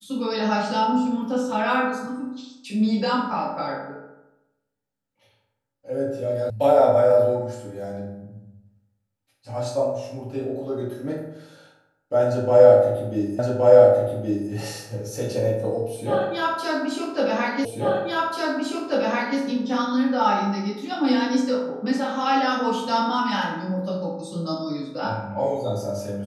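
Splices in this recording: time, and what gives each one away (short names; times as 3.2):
6.5 sound cut off
13.39 repeat of the last 1.12 s
17.65 repeat of the last 1.74 s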